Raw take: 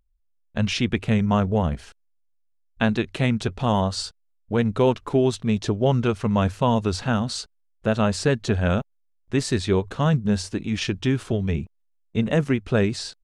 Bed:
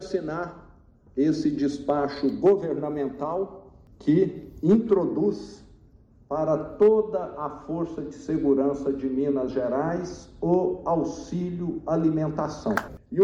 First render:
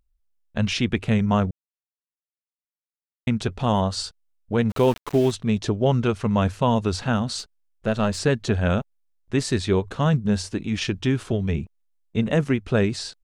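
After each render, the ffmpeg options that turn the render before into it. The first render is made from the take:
ffmpeg -i in.wav -filter_complex "[0:a]asplit=3[link_01][link_02][link_03];[link_01]afade=type=out:start_time=4.69:duration=0.02[link_04];[link_02]aeval=exprs='val(0)*gte(abs(val(0)),0.0266)':channel_layout=same,afade=type=in:start_time=4.69:duration=0.02,afade=type=out:start_time=5.3:duration=0.02[link_05];[link_03]afade=type=in:start_time=5.3:duration=0.02[link_06];[link_04][link_05][link_06]amix=inputs=3:normalize=0,asettb=1/sr,asplit=3[link_07][link_08][link_09];[link_07]atrim=end=7.394[link_10];[link_08]atrim=start=7.39:end=8.19,asetpts=PTS-STARTPTS,afade=type=in:duration=0.004:curve=qsin,afade=type=out:start_time=0.796:duration=0.004:curve=qsin,aeval=exprs='if(lt(val(0),0),0.708*val(0),val(0))':channel_layout=same[link_11];[link_09]atrim=start=8.186[link_12];[link_10][link_11]acrossfade=duration=0.004:curve1=hsin:curve2=qsin[link_13];[link_13][link_12]acrossfade=duration=0.004:curve1=qsin:curve2=hsin,asplit=3[link_14][link_15][link_16];[link_14]atrim=end=1.51,asetpts=PTS-STARTPTS,afade=type=out:start_time=1.506:duration=0.004:curve=hsin[link_17];[link_15]atrim=start=1.51:end=3.27,asetpts=PTS-STARTPTS,volume=0[link_18];[link_16]atrim=start=3.27,asetpts=PTS-STARTPTS,afade=type=in:duration=0.004:curve=hsin[link_19];[link_17][link_18][link_19]concat=n=3:v=0:a=1" out.wav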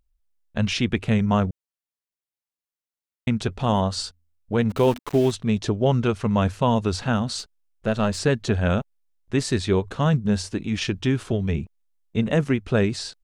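ffmpeg -i in.wav -filter_complex "[0:a]asettb=1/sr,asplit=3[link_01][link_02][link_03];[link_01]atrim=end=3.534[link_04];[link_02]atrim=start=3.53:end=4.99,asetpts=PTS-STARTPTS,afade=type=in:duration=0.004:curve=qsin,afade=type=out:start_time=1.456:duration=0.004:curve=qsin,bandreject=frequency=82.72:width_type=h:width=4,bandreject=frequency=165.44:width_type=h:width=4,bandreject=frequency=248.16:width_type=h:width=4[link_05];[link_03]atrim=start=4.986[link_06];[link_04][link_05]acrossfade=duration=0.004:curve1=hsin:curve2=qsin[link_07];[link_07][link_06]acrossfade=duration=0.004:curve1=qsin:curve2=hsin" out.wav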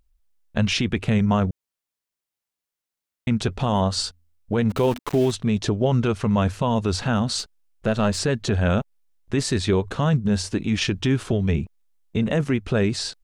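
ffmpeg -i in.wav -filter_complex "[0:a]asplit=2[link_01][link_02];[link_02]acompressor=threshold=-27dB:ratio=6,volume=-2dB[link_03];[link_01][link_03]amix=inputs=2:normalize=0,alimiter=limit=-11.5dB:level=0:latency=1:release=16" out.wav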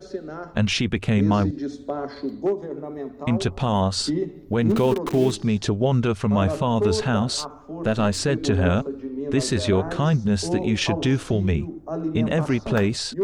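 ffmpeg -i in.wav -i bed.wav -filter_complex "[1:a]volume=-4.5dB[link_01];[0:a][link_01]amix=inputs=2:normalize=0" out.wav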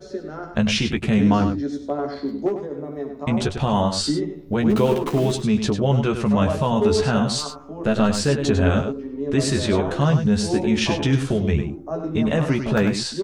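ffmpeg -i in.wav -filter_complex "[0:a]asplit=2[link_01][link_02];[link_02]adelay=14,volume=-5.5dB[link_03];[link_01][link_03]amix=inputs=2:normalize=0,asplit=2[link_04][link_05];[link_05]adelay=99.13,volume=-8dB,highshelf=frequency=4000:gain=-2.23[link_06];[link_04][link_06]amix=inputs=2:normalize=0" out.wav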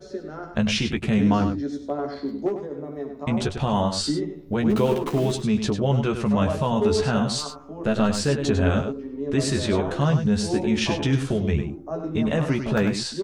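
ffmpeg -i in.wav -af "volume=-2.5dB" out.wav

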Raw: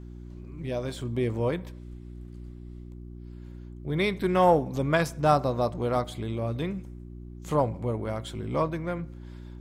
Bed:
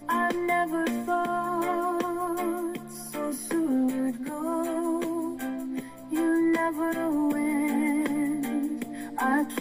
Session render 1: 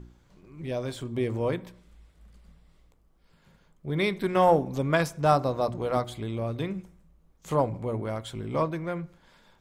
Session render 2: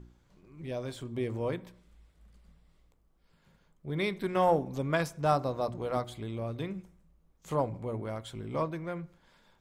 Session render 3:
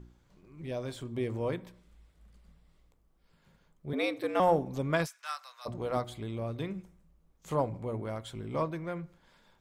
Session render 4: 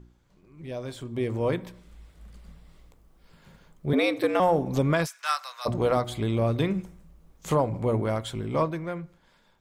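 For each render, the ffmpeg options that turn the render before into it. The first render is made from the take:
ffmpeg -i in.wav -af "bandreject=frequency=60:width_type=h:width=4,bandreject=frequency=120:width_type=h:width=4,bandreject=frequency=180:width_type=h:width=4,bandreject=frequency=240:width_type=h:width=4,bandreject=frequency=300:width_type=h:width=4,bandreject=frequency=360:width_type=h:width=4" out.wav
ffmpeg -i in.wav -af "volume=-5dB" out.wav
ffmpeg -i in.wav -filter_complex "[0:a]asettb=1/sr,asplit=3[link_01][link_02][link_03];[link_01]atrim=end=3.934[link_04];[link_02]atrim=start=3.93:end=4.4,asetpts=PTS-STARTPTS,afade=type=in:duration=0.004:curve=qsin,afade=type=out:start_time=0.466:duration=0.004:curve=qsin,afreqshift=110[link_05];[link_03]atrim=start=4.396[link_06];[link_04][link_05]acrossfade=duration=0.004:curve1=hsin:curve2=qsin[link_07];[link_07][link_06]acrossfade=duration=0.004:curve1=qsin:curve2=hsin,asplit=3[link_08][link_09][link_10];[link_08]afade=type=out:start_time=5.05:duration=0.02[link_11];[link_09]highpass=frequency=1400:width=0.5412,highpass=frequency=1400:width=1.3066,afade=type=in:start_time=5.05:duration=0.02,afade=type=out:start_time=5.65:duration=0.02[link_12];[link_10]afade=type=in:start_time=5.65:duration=0.02[link_13];[link_11][link_12][link_13]amix=inputs=3:normalize=0" out.wav
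ffmpeg -i in.wav -af "dynaudnorm=framelen=360:gausssize=9:maxgain=12dB,alimiter=limit=-13dB:level=0:latency=1:release=248" out.wav

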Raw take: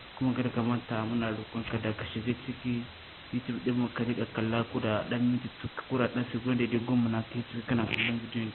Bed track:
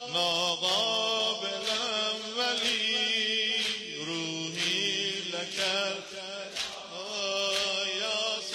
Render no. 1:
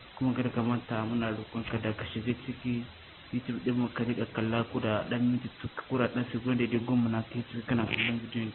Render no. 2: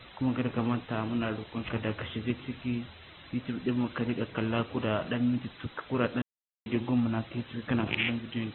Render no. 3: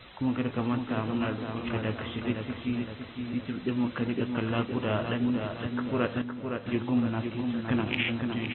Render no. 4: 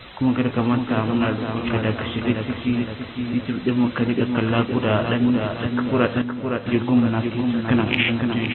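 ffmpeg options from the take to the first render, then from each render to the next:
ffmpeg -i in.wav -af "afftdn=noise_reduction=8:noise_floor=-48" out.wav
ffmpeg -i in.wav -filter_complex "[0:a]asplit=3[link_01][link_02][link_03];[link_01]atrim=end=6.22,asetpts=PTS-STARTPTS,afade=type=out:start_time=6.216:duration=0.004:curve=hsin[link_04];[link_02]atrim=start=6.22:end=6.66,asetpts=PTS-STARTPTS,volume=0[link_05];[link_03]atrim=start=6.66,asetpts=PTS-STARTPTS,afade=type=in:duration=0.004:curve=hsin[link_06];[link_04][link_05][link_06]concat=n=3:v=0:a=1" out.wav
ffmpeg -i in.wav -filter_complex "[0:a]asplit=2[link_01][link_02];[link_02]adelay=20,volume=-13.5dB[link_03];[link_01][link_03]amix=inputs=2:normalize=0,asplit=2[link_04][link_05];[link_05]adelay=513,lowpass=frequency=3600:poles=1,volume=-5.5dB,asplit=2[link_06][link_07];[link_07]adelay=513,lowpass=frequency=3600:poles=1,volume=0.52,asplit=2[link_08][link_09];[link_09]adelay=513,lowpass=frequency=3600:poles=1,volume=0.52,asplit=2[link_10][link_11];[link_11]adelay=513,lowpass=frequency=3600:poles=1,volume=0.52,asplit=2[link_12][link_13];[link_13]adelay=513,lowpass=frequency=3600:poles=1,volume=0.52,asplit=2[link_14][link_15];[link_15]adelay=513,lowpass=frequency=3600:poles=1,volume=0.52,asplit=2[link_16][link_17];[link_17]adelay=513,lowpass=frequency=3600:poles=1,volume=0.52[link_18];[link_04][link_06][link_08][link_10][link_12][link_14][link_16][link_18]amix=inputs=8:normalize=0" out.wav
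ffmpeg -i in.wav -af "volume=9dB" out.wav

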